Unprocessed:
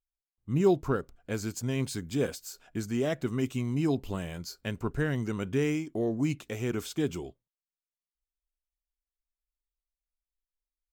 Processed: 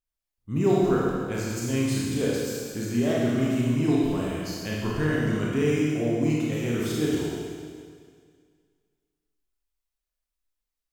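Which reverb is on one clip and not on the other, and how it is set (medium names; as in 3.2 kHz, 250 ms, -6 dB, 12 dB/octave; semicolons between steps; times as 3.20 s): Schroeder reverb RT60 2 s, combs from 26 ms, DRR -5.5 dB; trim -1 dB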